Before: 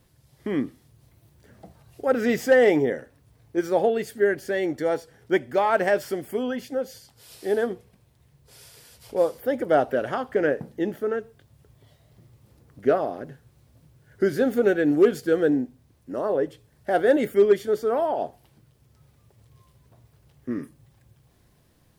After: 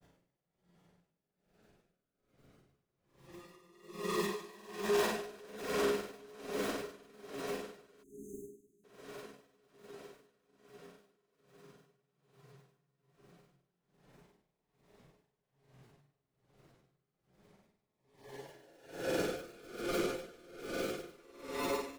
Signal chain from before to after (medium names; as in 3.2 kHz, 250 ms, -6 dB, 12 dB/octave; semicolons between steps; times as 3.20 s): vocoder on a broken chord major triad, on C#3, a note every 121 ms; treble shelf 2.7 kHz +8 dB; decimation with a swept rate 40×, swing 60% 2.5 Hz; Paulstretch 8.8×, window 0.25 s, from 7.01 s; on a send: echo that smears into a reverb 945 ms, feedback 55%, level -5 dB; on the sum: saturation -16.5 dBFS, distortion -16 dB; spectral selection erased 8.02–8.84 s, 430–6100 Hz; granulator, spray 38 ms, pitch spread up and down by 0 st; hum notches 50/100/150 Hz; logarithmic tremolo 1.2 Hz, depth 24 dB; trim -6 dB